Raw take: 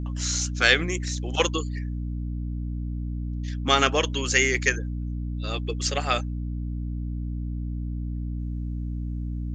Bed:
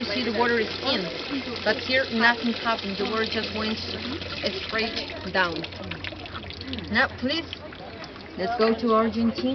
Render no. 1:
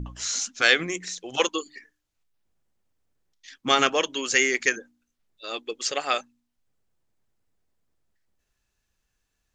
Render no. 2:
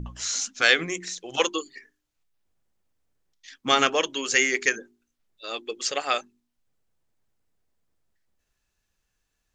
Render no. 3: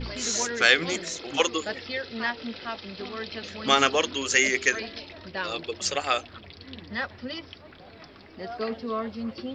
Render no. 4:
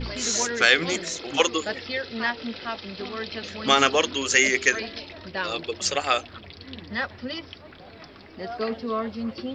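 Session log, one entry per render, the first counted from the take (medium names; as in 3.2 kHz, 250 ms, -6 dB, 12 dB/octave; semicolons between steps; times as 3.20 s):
de-hum 60 Hz, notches 5
hum notches 50/100/150/200/250/300/350/400 Hz
add bed -9.5 dB
trim +2.5 dB; peak limiter -3 dBFS, peak gain reduction 2.5 dB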